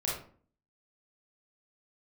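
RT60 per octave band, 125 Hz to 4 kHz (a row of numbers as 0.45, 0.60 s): 0.60, 0.65, 0.50, 0.45, 0.35, 0.30 s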